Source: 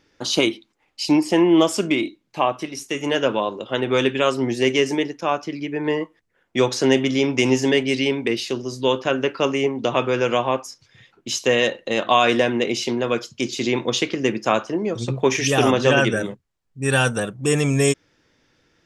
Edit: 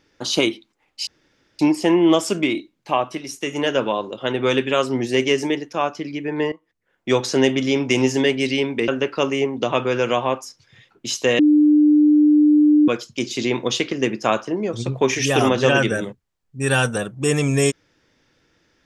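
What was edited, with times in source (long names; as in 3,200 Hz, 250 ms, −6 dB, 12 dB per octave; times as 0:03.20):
0:01.07: splice in room tone 0.52 s
0:06.00–0:06.58: fade in linear, from −17.5 dB
0:08.36–0:09.10: remove
0:11.61–0:13.10: beep over 299 Hz −10 dBFS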